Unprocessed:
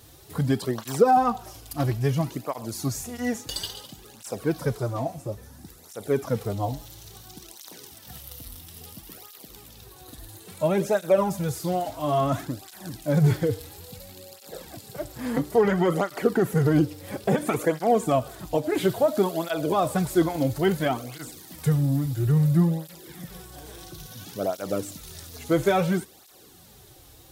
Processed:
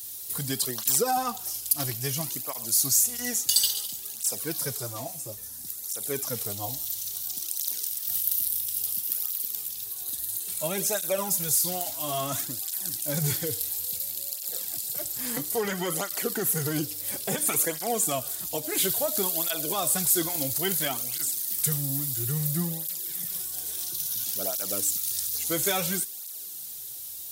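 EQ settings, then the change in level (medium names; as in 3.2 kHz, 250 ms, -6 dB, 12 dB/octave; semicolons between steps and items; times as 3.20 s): high-pass 66 Hz; pre-emphasis filter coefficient 0.8; treble shelf 2.3 kHz +11 dB; +4.0 dB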